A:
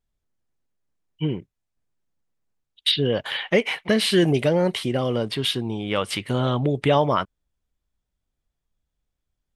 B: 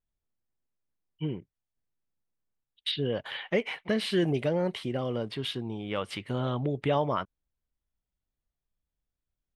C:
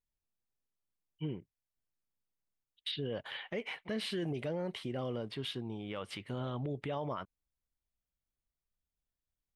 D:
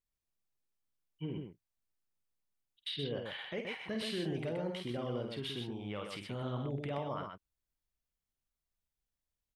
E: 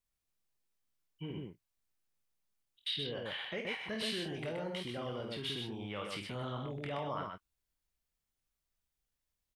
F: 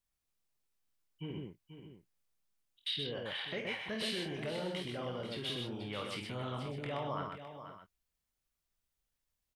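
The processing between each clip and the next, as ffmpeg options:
-af "aemphasis=mode=reproduction:type=cd,volume=0.398"
-af "alimiter=limit=0.0708:level=0:latency=1:release=33,volume=0.531"
-af "aecho=1:1:49.56|125.4:0.447|0.562,volume=0.794"
-filter_complex "[0:a]acrossover=split=680|840[s0][s1][s2];[s0]alimiter=level_in=4.73:limit=0.0631:level=0:latency=1,volume=0.211[s3];[s2]asplit=2[s4][s5];[s5]adelay=24,volume=0.531[s6];[s4][s6]amix=inputs=2:normalize=0[s7];[s3][s1][s7]amix=inputs=3:normalize=0,volume=1.26"
-af "aecho=1:1:485:0.299"

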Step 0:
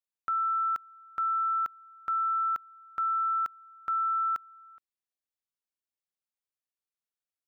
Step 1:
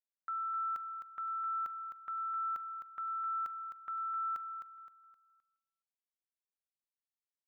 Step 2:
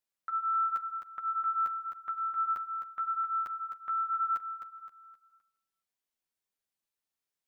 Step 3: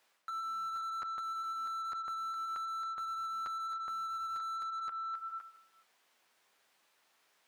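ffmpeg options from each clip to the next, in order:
-filter_complex "[0:a]agate=range=0.0224:threshold=0.00562:ratio=3:detection=peak,alimiter=level_in=3.16:limit=0.0631:level=0:latency=1,volume=0.316,asplit=2[s0][s1];[s1]aecho=0:1:260|520|780|1040:0.422|0.152|0.0547|0.0197[s2];[s0][s2]amix=inputs=2:normalize=0"
-af "flanger=delay=9.2:depth=2.9:regen=-8:speed=0.89:shape=sinusoidal,volume=2.66"
-filter_complex "[0:a]lowshelf=f=500:g=-4.5,asplit=2[s0][s1];[s1]highpass=f=720:p=1,volume=39.8,asoftclip=type=tanh:threshold=0.0596[s2];[s0][s2]amix=inputs=2:normalize=0,lowpass=f=1400:p=1,volume=0.501,areverse,acompressor=threshold=0.00891:ratio=6,areverse,volume=1.41"

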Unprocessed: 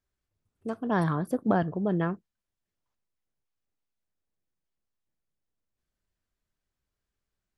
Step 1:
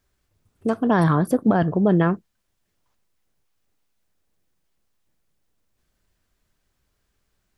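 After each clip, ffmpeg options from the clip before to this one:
-filter_complex "[0:a]asplit=2[s0][s1];[s1]acompressor=threshold=0.0178:ratio=6,volume=1[s2];[s0][s2]amix=inputs=2:normalize=0,alimiter=limit=0.15:level=0:latency=1:release=20,volume=2.37"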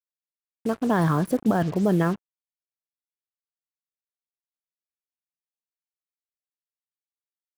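-af "acrusher=bits=5:mix=0:aa=0.5,volume=0.668"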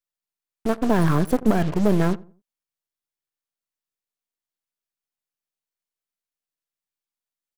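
-filter_complex "[0:a]aeval=exprs='if(lt(val(0),0),0.251*val(0),val(0))':c=same,asplit=2[s0][s1];[s1]adelay=86,lowpass=f=1100:p=1,volume=0.1,asplit=2[s2][s3];[s3]adelay=86,lowpass=f=1100:p=1,volume=0.33,asplit=2[s4][s5];[s5]adelay=86,lowpass=f=1100:p=1,volume=0.33[s6];[s0][s2][s4][s6]amix=inputs=4:normalize=0,volume=2"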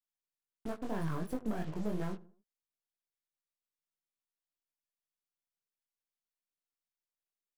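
-af "acompressor=threshold=0.0112:ratio=1.5,flanger=delay=19:depth=4.5:speed=2.9,volume=0.531"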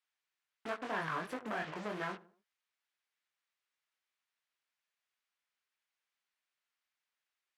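-af "asoftclip=type=tanh:threshold=0.0376,bandpass=f=1900:t=q:w=0.97:csg=0,volume=4.22"

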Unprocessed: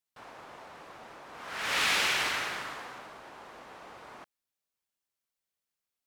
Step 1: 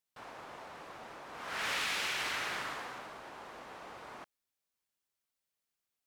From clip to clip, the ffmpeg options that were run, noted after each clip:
-af "acompressor=threshold=0.0251:ratio=6"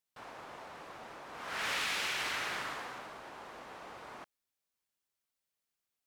-af anull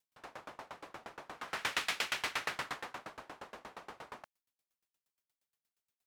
-af "aeval=exprs='val(0)*pow(10,-28*if(lt(mod(8.5*n/s,1),2*abs(8.5)/1000),1-mod(8.5*n/s,1)/(2*abs(8.5)/1000),(mod(8.5*n/s,1)-2*abs(8.5)/1000)/(1-2*abs(8.5)/1000))/20)':c=same,volume=2.11"

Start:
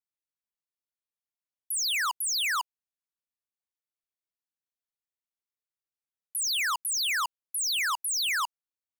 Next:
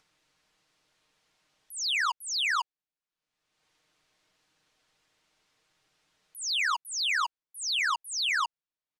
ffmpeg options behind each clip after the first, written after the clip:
-af "lowpass=5100,aecho=1:1:6.5:0.49,acompressor=mode=upward:threshold=0.00282:ratio=2.5"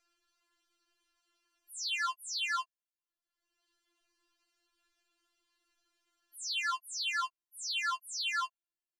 -af "afftfilt=real='re*4*eq(mod(b,16),0)':imag='im*4*eq(mod(b,16),0)':win_size=2048:overlap=0.75,volume=0.631"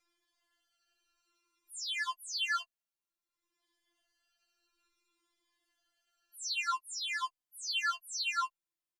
-filter_complex "[0:a]asplit=2[s0][s1];[s1]adelay=3.4,afreqshift=-0.57[s2];[s0][s2]amix=inputs=2:normalize=1,volume=1.33"

